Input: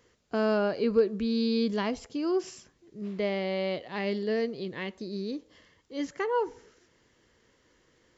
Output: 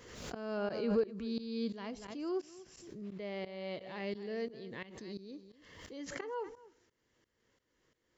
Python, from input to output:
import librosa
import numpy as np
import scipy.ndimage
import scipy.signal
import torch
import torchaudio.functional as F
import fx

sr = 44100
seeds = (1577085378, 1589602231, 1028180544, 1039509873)

y = x + 10.0 ** (-14.5 / 20.0) * np.pad(x, (int(241 * sr / 1000.0), 0))[:len(x)]
y = fx.tremolo_shape(y, sr, shape='saw_up', hz=2.9, depth_pct=90)
y = fx.pre_swell(y, sr, db_per_s=49.0)
y = y * librosa.db_to_amplitude(-7.5)